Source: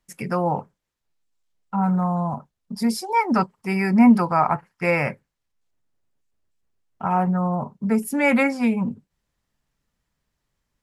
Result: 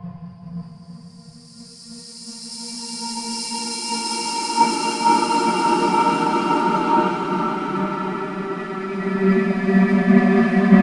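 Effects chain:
spectral dynamics exaggerated over time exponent 3
low-shelf EQ 210 Hz +8.5 dB
leveller curve on the samples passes 5
downsampling to 22,050 Hz
convolution reverb RT60 1.7 s, pre-delay 3 ms, DRR 14.5 dB
extreme stretch with random phases 7.3×, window 1.00 s, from 0:02.43
multiband upward and downward expander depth 100%
level −6 dB

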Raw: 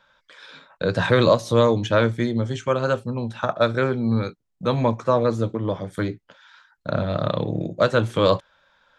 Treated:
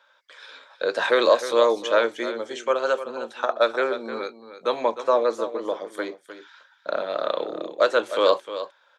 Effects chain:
high-pass filter 370 Hz 24 dB per octave
on a send: single-tap delay 307 ms −12 dB

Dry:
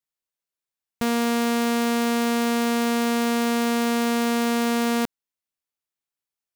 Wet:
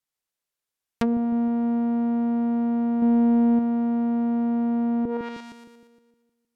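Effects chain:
echo with a time of its own for lows and highs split 460 Hz, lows 155 ms, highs 117 ms, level −6 dB
0:03.02–0:03.59: leveller curve on the samples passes 2
treble cut that deepens with the level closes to 400 Hz, closed at −20.5 dBFS
level +2.5 dB

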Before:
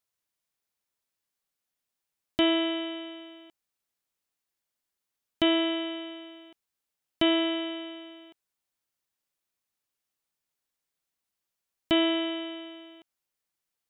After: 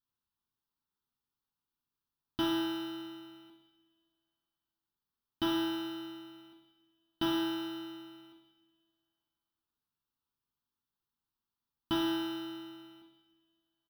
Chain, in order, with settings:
parametric band 890 Hz +3.5 dB 0.47 octaves
in parallel at −4.5 dB: sample-rate reduction 2,200 Hz, jitter 0%
on the sum: phaser with its sweep stopped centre 2,200 Hz, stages 6
double-tracking delay 42 ms −14 dB
coupled-rooms reverb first 0.81 s, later 2.5 s, from −19 dB, DRR 2 dB
level −8 dB

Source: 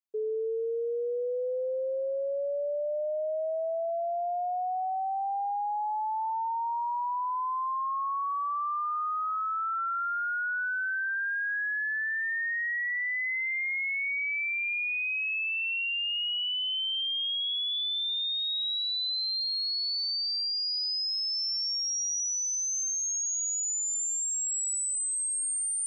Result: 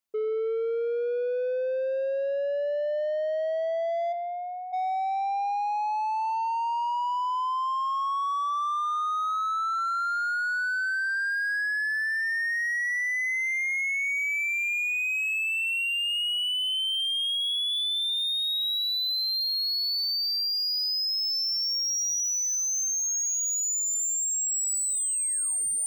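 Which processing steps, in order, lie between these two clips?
0:04.12–0:04.72: high-pass filter 820 Hz → 1,500 Hz 12 dB per octave
in parallel at +1 dB: soft clipping −38.5 dBFS, distortion −11 dB

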